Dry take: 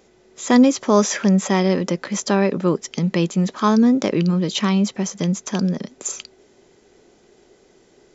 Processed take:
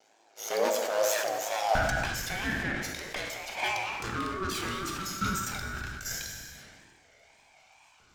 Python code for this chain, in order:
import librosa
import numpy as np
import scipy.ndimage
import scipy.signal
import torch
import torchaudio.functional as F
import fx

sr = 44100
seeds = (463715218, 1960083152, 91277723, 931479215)

y = fx.lower_of_two(x, sr, delay_ms=1.3)
y = fx.low_shelf(y, sr, hz=490.0, db=-12.0)
y = fx.hum_notches(y, sr, base_hz=60, count=9)
y = fx.tube_stage(y, sr, drive_db=30.0, bias=0.5)
y = fx.wow_flutter(y, sr, seeds[0], rate_hz=2.1, depth_cents=140.0)
y = fx.filter_lfo_highpass(y, sr, shape='saw_up', hz=0.25, low_hz=350.0, high_hz=1800.0, q=5.3)
y = fx.ring_mod(y, sr, carrier_hz=fx.steps((0.0, 54.0), (1.75, 760.0)))
y = fx.rev_gated(y, sr, seeds[1], gate_ms=460, shape='falling', drr_db=3.0)
y = fx.sustainer(y, sr, db_per_s=30.0)